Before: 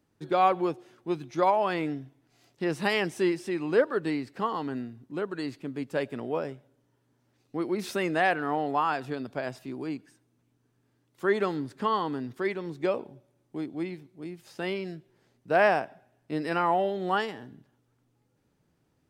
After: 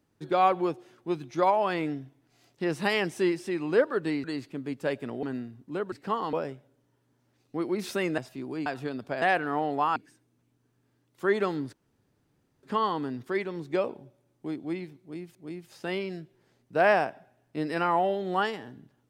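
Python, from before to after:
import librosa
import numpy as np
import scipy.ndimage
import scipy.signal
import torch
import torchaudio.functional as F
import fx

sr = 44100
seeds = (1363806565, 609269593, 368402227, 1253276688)

y = fx.edit(x, sr, fx.swap(start_s=4.24, length_s=0.41, other_s=5.34, other_length_s=0.99),
    fx.swap(start_s=8.18, length_s=0.74, other_s=9.48, other_length_s=0.48),
    fx.insert_room_tone(at_s=11.73, length_s=0.9),
    fx.repeat(start_s=14.1, length_s=0.35, count=2), tone=tone)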